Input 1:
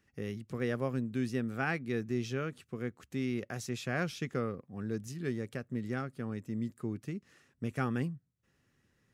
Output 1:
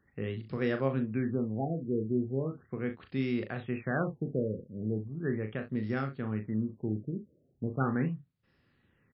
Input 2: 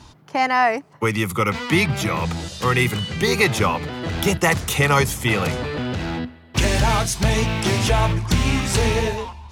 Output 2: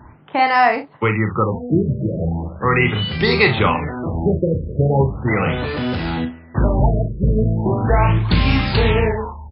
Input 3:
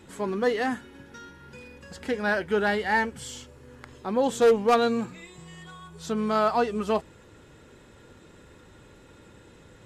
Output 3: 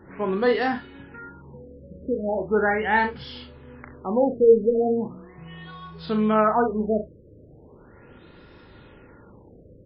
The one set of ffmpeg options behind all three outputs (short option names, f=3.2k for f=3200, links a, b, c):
-af "aecho=1:1:37|65:0.447|0.188,afftfilt=real='re*lt(b*sr/1024,600*pow(5500/600,0.5+0.5*sin(2*PI*0.38*pts/sr)))':imag='im*lt(b*sr/1024,600*pow(5500/600,0.5+0.5*sin(2*PI*0.38*pts/sr)))':win_size=1024:overlap=0.75,volume=2.5dB"